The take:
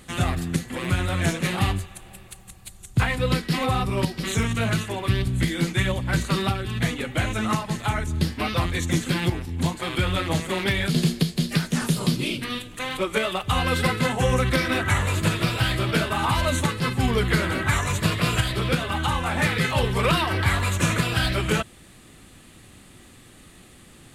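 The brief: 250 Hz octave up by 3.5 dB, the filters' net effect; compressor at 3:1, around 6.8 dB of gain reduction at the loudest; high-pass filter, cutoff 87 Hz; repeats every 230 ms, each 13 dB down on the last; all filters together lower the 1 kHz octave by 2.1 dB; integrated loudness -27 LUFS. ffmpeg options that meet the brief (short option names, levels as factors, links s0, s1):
-af "highpass=87,equalizer=f=250:t=o:g=5.5,equalizer=f=1000:t=o:g=-3,acompressor=threshold=0.0631:ratio=3,aecho=1:1:230|460|690:0.224|0.0493|0.0108,volume=1.06"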